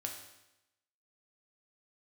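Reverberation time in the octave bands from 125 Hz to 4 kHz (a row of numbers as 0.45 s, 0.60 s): 0.95 s, 0.90 s, 0.90 s, 0.90 s, 0.90 s, 0.90 s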